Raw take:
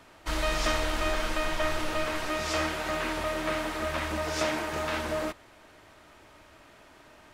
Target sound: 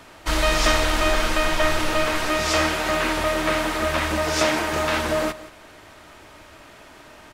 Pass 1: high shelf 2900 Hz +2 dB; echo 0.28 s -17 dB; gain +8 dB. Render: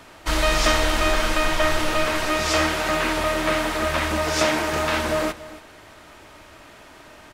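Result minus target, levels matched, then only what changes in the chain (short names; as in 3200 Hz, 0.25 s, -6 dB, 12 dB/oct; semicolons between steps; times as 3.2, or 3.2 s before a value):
echo 0.104 s late
change: echo 0.176 s -17 dB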